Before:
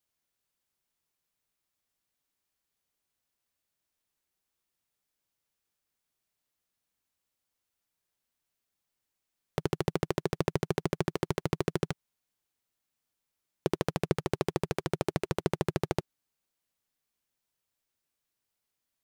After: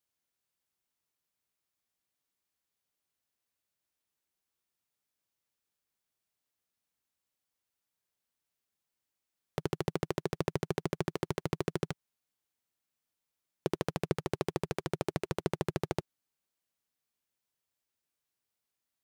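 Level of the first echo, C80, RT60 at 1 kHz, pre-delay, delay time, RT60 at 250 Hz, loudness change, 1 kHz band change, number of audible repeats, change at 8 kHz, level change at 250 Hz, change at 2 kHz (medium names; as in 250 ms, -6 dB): no echo, no reverb, no reverb, no reverb, no echo, no reverb, -3.0 dB, -3.0 dB, no echo, -3.0 dB, -3.0 dB, -3.0 dB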